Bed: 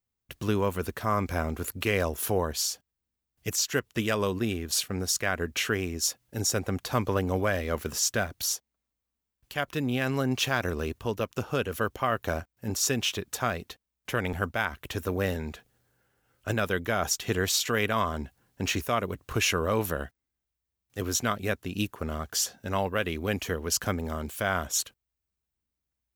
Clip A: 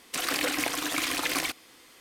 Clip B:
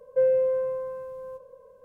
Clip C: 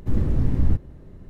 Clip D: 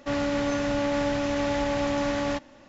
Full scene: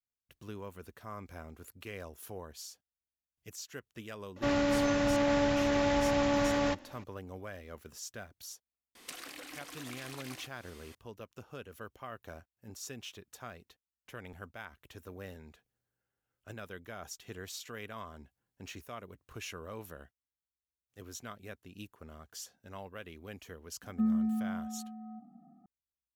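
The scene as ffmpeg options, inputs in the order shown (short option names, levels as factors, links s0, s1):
-filter_complex "[0:a]volume=0.133[s0];[1:a]acompressor=threshold=0.01:ratio=16:attack=12:release=463:knee=1:detection=peak[s1];[2:a]highpass=f=560:t=q:w=0.5412,highpass=f=560:t=q:w=1.307,lowpass=f=2000:t=q:w=0.5176,lowpass=f=2000:t=q:w=0.7071,lowpass=f=2000:t=q:w=1.932,afreqshift=-300[s2];[4:a]atrim=end=2.68,asetpts=PTS-STARTPTS,volume=0.794,afade=t=in:d=0.004:c=hsin,afade=t=out:st=2.676:d=0.004:c=hsin,adelay=4360[s3];[s1]atrim=end=2,asetpts=PTS-STARTPTS,volume=0.75,afade=t=in:d=0.004:c=hsin,afade=t=out:st=1.996:d=0.004:c=hsin,adelay=8950[s4];[s2]atrim=end=1.84,asetpts=PTS-STARTPTS,volume=0.708,afade=t=in:d=0.004:c=hsin,afade=t=out:st=1.836:d=0.004:c=hsin,adelay=23820[s5];[s0][s3][s4][s5]amix=inputs=4:normalize=0"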